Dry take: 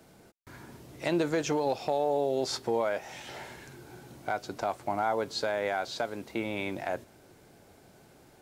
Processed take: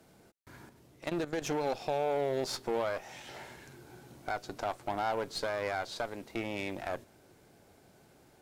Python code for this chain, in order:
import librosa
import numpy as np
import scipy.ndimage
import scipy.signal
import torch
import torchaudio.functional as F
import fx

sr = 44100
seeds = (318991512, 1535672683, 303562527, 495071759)

y = fx.cheby_harmonics(x, sr, harmonics=(8,), levels_db=(-21,), full_scale_db=-15.5)
y = fx.level_steps(y, sr, step_db=14, at=(0.69, 1.42))
y = F.gain(torch.from_numpy(y), -4.0).numpy()